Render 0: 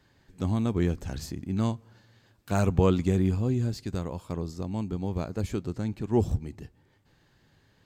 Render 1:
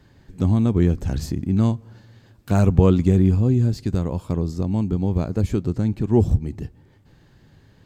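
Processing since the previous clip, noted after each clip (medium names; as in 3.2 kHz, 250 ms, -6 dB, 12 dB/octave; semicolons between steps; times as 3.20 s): bass shelf 470 Hz +8.5 dB; in parallel at -1 dB: compression, threshold -25 dBFS, peak gain reduction 15.5 dB; on the sum: trim -1 dB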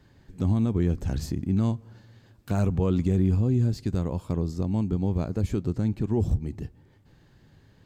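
peak limiter -11 dBFS, peak gain reduction 8 dB; trim -4 dB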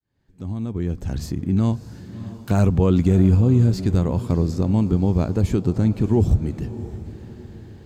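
fade-in on the opening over 2.08 s; echo that smears into a reverb 647 ms, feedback 45%, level -14.5 dB; trim +7 dB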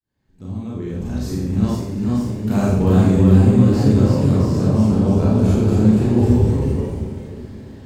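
ever faster or slower copies 535 ms, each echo +1 st, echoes 3; Schroeder reverb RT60 0.71 s, combs from 29 ms, DRR -5.5 dB; trim -5 dB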